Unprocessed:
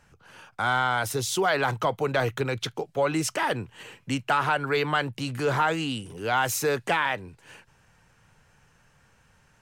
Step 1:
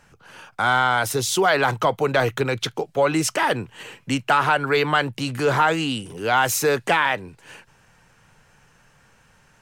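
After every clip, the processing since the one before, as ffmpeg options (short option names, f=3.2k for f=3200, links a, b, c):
-af "equalizer=f=69:t=o:w=1.5:g=-5.5,volume=5.5dB"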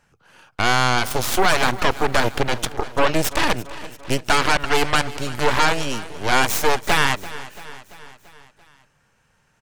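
-af "aeval=exprs='0.473*(cos(1*acos(clip(val(0)/0.473,-1,1)))-cos(1*PI/2))+0.0335*(cos(3*acos(clip(val(0)/0.473,-1,1)))-cos(3*PI/2))+0.0422*(cos(5*acos(clip(val(0)/0.473,-1,1)))-cos(5*PI/2))+0.168*(cos(6*acos(clip(val(0)/0.473,-1,1)))-cos(6*PI/2))+0.0473*(cos(7*acos(clip(val(0)/0.473,-1,1)))-cos(7*PI/2))':c=same,aecho=1:1:339|678|1017|1356|1695:0.141|0.0819|0.0475|0.0276|0.016,volume=-1.5dB"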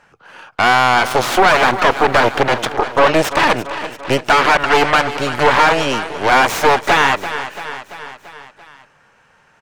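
-filter_complex "[0:a]asplit=2[a][b];[b]highpass=f=720:p=1,volume=18dB,asoftclip=type=tanh:threshold=-3.5dB[c];[a][c]amix=inputs=2:normalize=0,lowpass=f=1.5k:p=1,volume=-6dB,volume=3.5dB"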